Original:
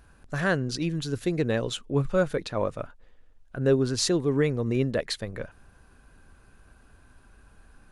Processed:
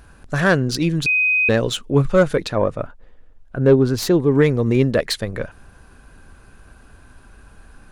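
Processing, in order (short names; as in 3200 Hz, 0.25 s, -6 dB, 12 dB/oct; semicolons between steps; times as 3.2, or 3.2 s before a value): self-modulated delay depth 0.056 ms; 1.06–1.49 bleep 2510 Hz -23 dBFS; 2.55–4.35 high shelf 2300 Hz -9 dB; gain +9 dB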